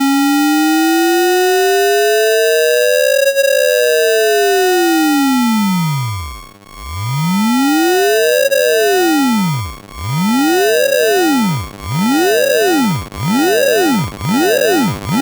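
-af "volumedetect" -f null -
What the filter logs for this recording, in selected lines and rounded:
mean_volume: -12.6 dB
max_volume: -2.7 dB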